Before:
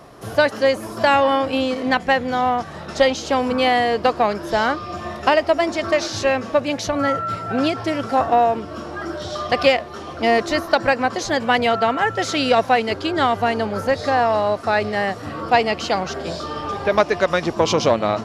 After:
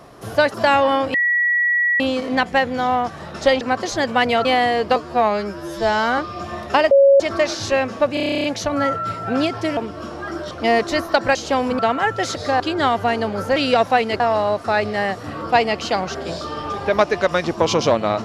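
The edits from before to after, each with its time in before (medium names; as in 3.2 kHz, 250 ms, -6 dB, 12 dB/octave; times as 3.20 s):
0.54–0.94 s: delete
1.54 s: add tone 1.93 kHz -14.5 dBFS 0.86 s
3.15–3.59 s: swap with 10.94–11.78 s
4.10–4.71 s: stretch 2×
5.44–5.73 s: bleep 553 Hz -7.5 dBFS
6.67 s: stutter 0.03 s, 11 plays
8.00–8.51 s: delete
9.25–10.10 s: delete
12.34–12.98 s: swap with 13.94–14.19 s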